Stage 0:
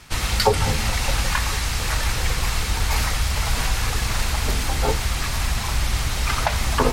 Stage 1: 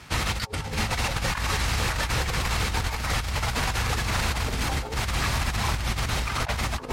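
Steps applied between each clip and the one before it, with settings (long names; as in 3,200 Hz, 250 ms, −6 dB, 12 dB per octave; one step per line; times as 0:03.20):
high-pass filter 56 Hz 12 dB per octave
high-shelf EQ 4,500 Hz −7.5 dB
compressor whose output falls as the input rises −26 dBFS, ratio −0.5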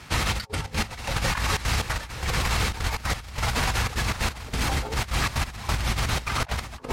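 gate pattern "xxxxx.xx.x...x" 182 BPM −12 dB
level +1.5 dB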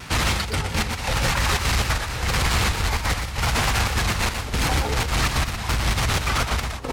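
soft clipping −23.5 dBFS, distortion −12 dB
on a send: single-tap delay 120 ms −7 dB
on the sum: pitch modulation by a square or saw wave saw down 4.4 Hz, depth 100 cents
level +7 dB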